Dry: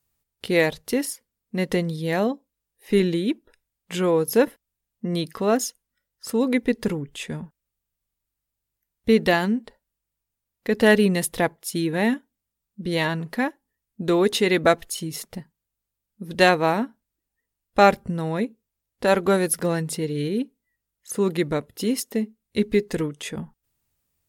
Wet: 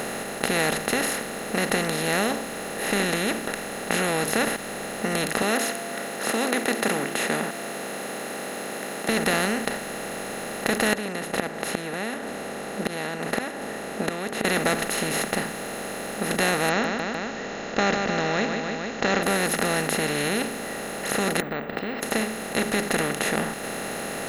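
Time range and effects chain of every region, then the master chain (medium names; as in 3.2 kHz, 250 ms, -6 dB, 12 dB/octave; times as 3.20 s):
5.42–9.09 s: high-pass 240 Hz 24 dB/octave + de-hum 342.7 Hz, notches 2
10.93–14.45 s: band-pass filter 440 Hz, Q 0.64 + inverted gate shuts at -22 dBFS, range -30 dB
16.69–19.23 s: brick-wall FIR low-pass 7.2 kHz + treble shelf 4.4 kHz -8.5 dB + feedback delay 151 ms, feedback 44%, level -22 dB
21.40–22.03 s: inverted gate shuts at -28 dBFS, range -26 dB + Gaussian low-pass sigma 5.2 samples + careless resampling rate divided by 2×, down filtered, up zero stuff
whole clip: spectral levelling over time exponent 0.2; dynamic bell 510 Hz, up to -6 dB, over -23 dBFS, Q 0.79; trim -9 dB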